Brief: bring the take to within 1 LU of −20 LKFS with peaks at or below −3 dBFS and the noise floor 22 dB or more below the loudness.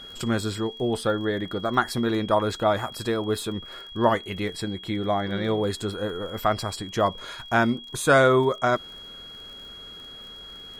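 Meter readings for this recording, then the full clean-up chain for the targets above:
crackle rate 28 per second; interfering tone 3,300 Hz; level of the tone −40 dBFS; integrated loudness −25.0 LKFS; sample peak −6.0 dBFS; target loudness −20.0 LKFS
→ click removal
notch filter 3,300 Hz, Q 30
level +5 dB
brickwall limiter −3 dBFS

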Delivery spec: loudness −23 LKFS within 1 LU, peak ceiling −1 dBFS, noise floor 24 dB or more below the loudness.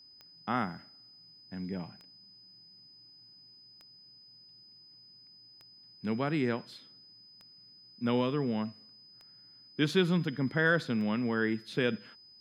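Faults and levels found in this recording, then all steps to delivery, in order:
number of clicks 7; interfering tone 5,000 Hz; level of the tone −54 dBFS; integrated loudness −31.5 LKFS; sample peak −14.0 dBFS; target loudness −23.0 LKFS
→ click removal
notch filter 5,000 Hz, Q 30
level +8.5 dB

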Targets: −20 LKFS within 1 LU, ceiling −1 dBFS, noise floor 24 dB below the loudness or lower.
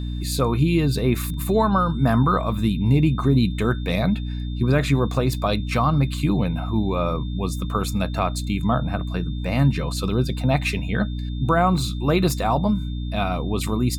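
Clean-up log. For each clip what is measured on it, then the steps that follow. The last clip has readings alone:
mains hum 60 Hz; hum harmonics up to 300 Hz; level of the hum −25 dBFS; interfering tone 3,600 Hz; level of the tone −44 dBFS; integrated loudness −22.0 LKFS; sample peak −7.0 dBFS; target loudness −20.0 LKFS
→ mains-hum notches 60/120/180/240/300 Hz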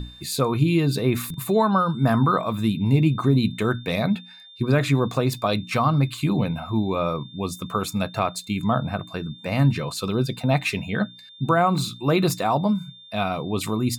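mains hum none found; interfering tone 3,600 Hz; level of the tone −44 dBFS
→ notch filter 3,600 Hz, Q 30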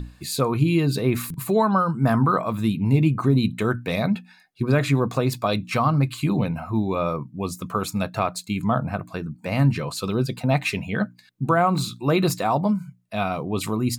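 interfering tone none found; integrated loudness −23.5 LKFS; sample peak −8.0 dBFS; target loudness −20.0 LKFS
→ level +3.5 dB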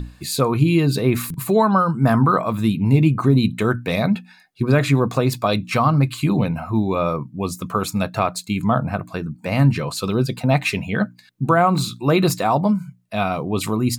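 integrated loudness −20.0 LKFS; sample peak −4.5 dBFS; background noise floor −50 dBFS

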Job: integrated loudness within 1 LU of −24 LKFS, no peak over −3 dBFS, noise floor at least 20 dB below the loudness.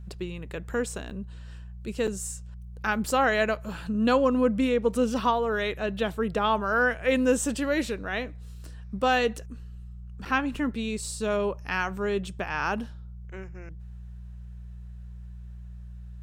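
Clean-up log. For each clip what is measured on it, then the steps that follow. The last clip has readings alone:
number of dropouts 3; longest dropout 6.1 ms; mains hum 60 Hz; hum harmonics up to 180 Hz; level of the hum −39 dBFS; integrated loudness −27.0 LKFS; sample peak −10.0 dBFS; target loudness −24.0 LKFS
→ repair the gap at 0:01.10/0:02.07/0:10.25, 6.1 ms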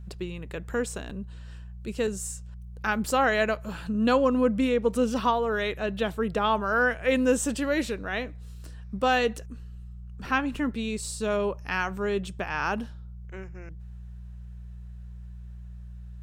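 number of dropouts 0; mains hum 60 Hz; hum harmonics up to 180 Hz; level of the hum −39 dBFS
→ hum removal 60 Hz, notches 3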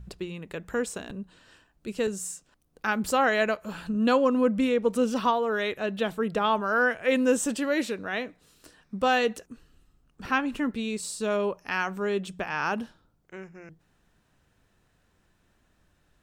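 mains hum none found; integrated loudness −27.0 LKFS; sample peak −10.5 dBFS; target loudness −24.0 LKFS
→ level +3 dB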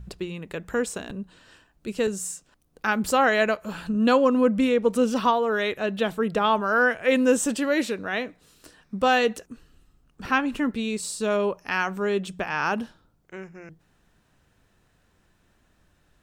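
integrated loudness −24.0 LKFS; sample peak −7.5 dBFS; background noise floor −65 dBFS

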